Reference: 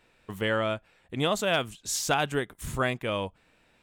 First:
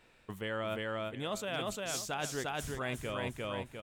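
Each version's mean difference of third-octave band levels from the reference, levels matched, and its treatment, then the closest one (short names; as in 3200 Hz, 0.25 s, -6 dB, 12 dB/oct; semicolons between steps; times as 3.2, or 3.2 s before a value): 8.5 dB: feedback echo 0.351 s, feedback 30%, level -4.5 dB; reverse; compressor 6:1, threshold -34 dBFS, peak gain reduction 13.5 dB; reverse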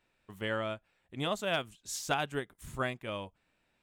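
2.0 dB: notch 470 Hz, Q 12; upward expander 1.5:1, over -35 dBFS; gain -4.5 dB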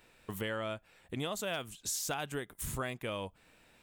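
4.0 dB: high shelf 8900 Hz +11.5 dB; compressor 3:1, threshold -37 dBFS, peak gain reduction 12.5 dB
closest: second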